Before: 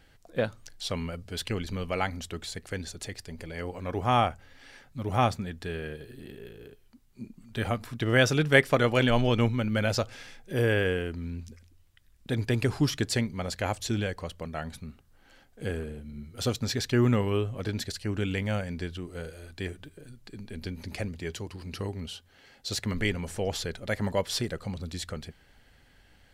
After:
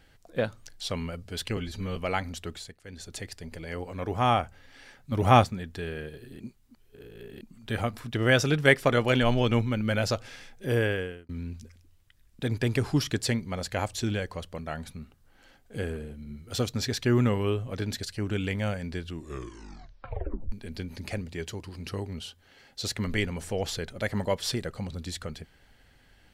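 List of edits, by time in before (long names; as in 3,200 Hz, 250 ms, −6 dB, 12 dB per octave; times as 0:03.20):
0:01.57–0:01.83: time-stretch 1.5×
0:02.36–0:03.00: duck −15 dB, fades 0.29 s
0:04.99–0:05.31: clip gain +6 dB
0:06.27–0:07.28: reverse
0:10.65–0:11.16: fade out
0:18.93: tape stop 1.46 s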